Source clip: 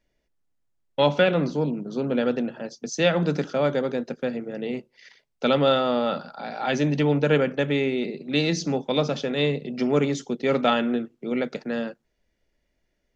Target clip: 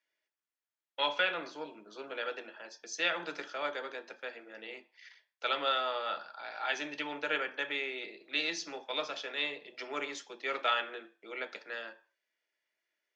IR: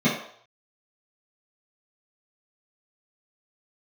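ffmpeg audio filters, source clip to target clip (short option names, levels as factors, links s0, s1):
-filter_complex "[0:a]highpass=1400,highshelf=f=3600:g=-10.5,asplit=2[s0][s1];[1:a]atrim=start_sample=2205,asetrate=66150,aresample=44100[s2];[s1][s2]afir=irnorm=-1:irlink=0,volume=0.1[s3];[s0][s3]amix=inputs=2:normalize=0"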